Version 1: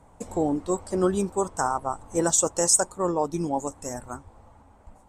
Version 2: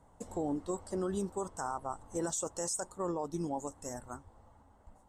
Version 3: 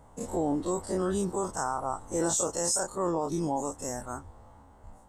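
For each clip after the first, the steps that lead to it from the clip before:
notch 2400 Hz, Q 6.5; limiter -18 dBFS, peak gain reduction 10.5 dB; gain -8 dB
spectral dilation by 60 ms; gain +3.5 dB

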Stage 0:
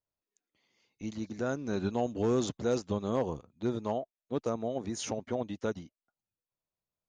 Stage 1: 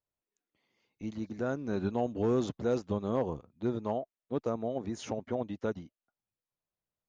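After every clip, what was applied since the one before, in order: LPF 2300 Hz 6 dB/oct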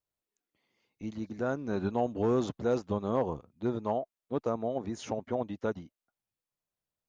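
dynamic EQ 940 Hz, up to +4 dB, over -42 dBFS, Q 1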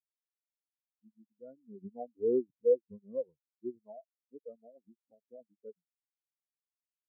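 spectral expander 4:1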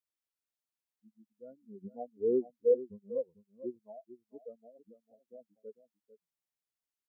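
echo 0.447 s -13.5 dB

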